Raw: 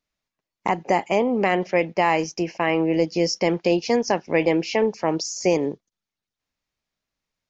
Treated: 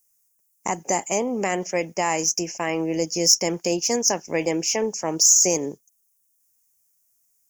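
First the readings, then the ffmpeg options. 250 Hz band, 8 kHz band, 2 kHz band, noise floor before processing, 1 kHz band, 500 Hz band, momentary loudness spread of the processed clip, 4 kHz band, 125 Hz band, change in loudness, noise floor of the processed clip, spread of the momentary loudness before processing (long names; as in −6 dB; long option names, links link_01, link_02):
−4.0 dB, can't be measured, −4.0 dB, below −85 dBFS, −4.0 dB, −4.0 dB, 11 LU, +6.5 dB, −4.0 dB, +1.0 dB, −68 dBFS, 4 LU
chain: -af "aexciter=amount=14:drive=9.9:freq=6400,volume=-4dB"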